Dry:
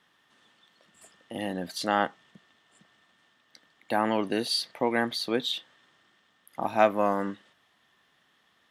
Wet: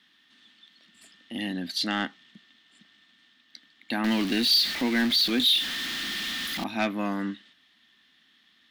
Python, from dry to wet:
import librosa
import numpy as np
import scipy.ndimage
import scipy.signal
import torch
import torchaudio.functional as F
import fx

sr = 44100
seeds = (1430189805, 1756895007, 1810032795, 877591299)

y = fx.zero_step(x, sr, step_db=-30.0, at=(4.04, 6.64))
y = fx.graphic_eq(y, sr, hz=(125, 250, 500, 1000, 2000, 4000, 8000), db=(-8, 10, -11, -6, 4, 10, -4))
y = 10.0 ** (-15.0 / 20.0) * np.tanh(y / 10.0 ** (-15.0 / 20.0))